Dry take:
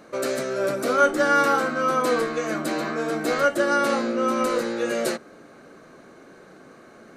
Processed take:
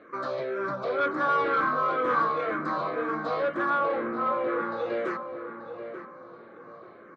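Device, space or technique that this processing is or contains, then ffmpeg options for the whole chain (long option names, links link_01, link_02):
barber-pole phaser into a guitar amplifier: -filter_complex "[0:a]asettb=1/sr,asplit=3[link_01][link_02][link_03];[link_01]atrim=end=1.264[link_04];[link_02]atrim=start=1.26:end=2.51,asetpts=PTS-STARTPTS,afade=type=in:duration=0.004:curve=qsin,afade=type=out:start_time=1.246:duration=0.004:curve=qsin,asplit=2[link_05][link_06];[link_06]adelay=24,volume=-3dB[link_07];[link_05][link_07]amix=inputs=2:normalize=0,atrim=end_sample=55125[link_08];[link_03]atrim=start=2.506[link_09];[link_04][link_08]acrossfade=duration=0.004:curve1=hsin:curve2=qsin[link_10];[link_10][link_09]acrossfade=duration=0.004:curve1=qsin:curve2=hsin,asettb=1/sr,asplit=3[link_11][link_12][link_13];[link_11]atrim=end=3.704[link_14];[link_12]atrim=start=3.7:end=4.72,asetpts=PTS-STARTPTS,afade=type=in:duration=0.004:curve=qsin,afade=type=out:start_time=1.016:duration=0.004:curve=qsin,lowpass=2600[link_15];[link_13]atrim=start=4.716[link_16];[link_14][link_15]acrossfade=duration=0.004:curve1=hsin:curve2=qsin[link_17];[link_17][link_16]acrossfade=duration=0.004:curve1=qsin:curve2=hsin,asplit=2[link_18][link_19];[link_19]afreqshift=-2[link_20];[link_18][link_20]amix=inputs=2:normalize=1,asoftclip=type=tanh:threshold=-21.5dB,highpass=100,equalizer=frequency=110:width_type=q:width=4:gain=3,equalizer=frequency=240:width_type=q:width=4:gain=-7,equalizer=frequency=1100:width_type=q:width=4:gain=10,equalizer=frequency=2800:width_type=q:width=4:gain=-9,lowpass=frequency=3500:width=0.5412,lowpass=frequency=3500:width=1.3066,asplit=2[link_21][link_22];[link_22]adelay=883,lowpass=frequency=1900:poles=1,volume=-8.5dB,asplit=2[link_23][link_24];[link_24]adelay=883,lowpass=frequency=1900:poles=1,volume=0.31,asplit=2[link_25][link_26];[link_26]adelay=883,lowpass=frequency=1900:poles=1,volume=0.31,asplit=2[link_27][link_28];[link_28]adelay=883,lowpass=frequency=1900:poles=1,volume=0.31[link_29];[link_21][link_23][link_25][link_27][link_29]amix=inputs=5:normalize=0,volume=-1dB"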